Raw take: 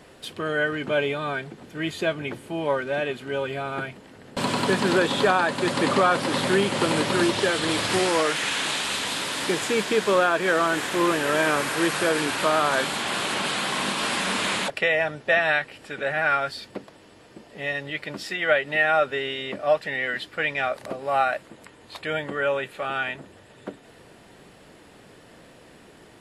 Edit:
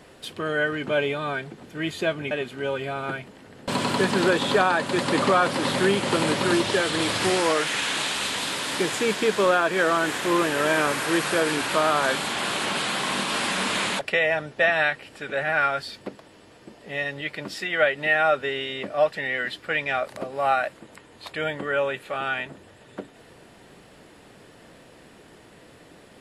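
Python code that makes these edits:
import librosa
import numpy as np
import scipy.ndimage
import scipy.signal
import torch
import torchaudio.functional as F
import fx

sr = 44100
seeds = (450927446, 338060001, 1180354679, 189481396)

y = fx.edit(x, sr, fx.cut(start_s=2.31, length_s=0.69), tone=tone)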